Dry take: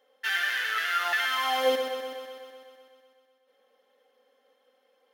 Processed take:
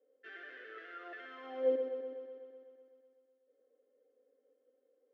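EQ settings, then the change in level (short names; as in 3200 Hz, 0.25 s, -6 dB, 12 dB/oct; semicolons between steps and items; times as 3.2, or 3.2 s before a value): ladder band-pass 390 Hz, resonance 40%; fixed phaser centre 370 Hz, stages 4; +8.0 dB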